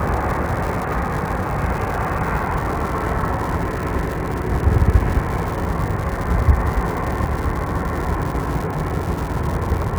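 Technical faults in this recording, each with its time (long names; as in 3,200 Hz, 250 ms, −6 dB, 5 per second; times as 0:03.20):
surface crackle 220 per second −24 dBFS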